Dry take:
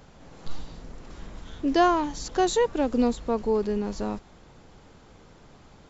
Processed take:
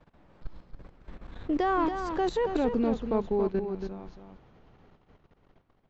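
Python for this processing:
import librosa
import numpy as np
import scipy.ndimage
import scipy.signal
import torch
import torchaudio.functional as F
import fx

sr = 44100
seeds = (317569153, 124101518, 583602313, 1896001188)

y = fx.doppler_pass(x, sr, speed_mps=33, closest_m=21.0, pass_at_s=2.42)
y = scipy.signal.sosfilt(scipy.signal.butter(2, 2800.0, 'lowpass', fs=sr, output='sos'), y)
y = fx.level_steps(y, sr, step_db=16)
y = y + 10.0 ** (-7.5 / 20.0) * np.pad(y, (int(279 * sr / 1000.0), 0))[:len(y)]
y = F.gain(torch.from_numpy(y), 6.5).numpy()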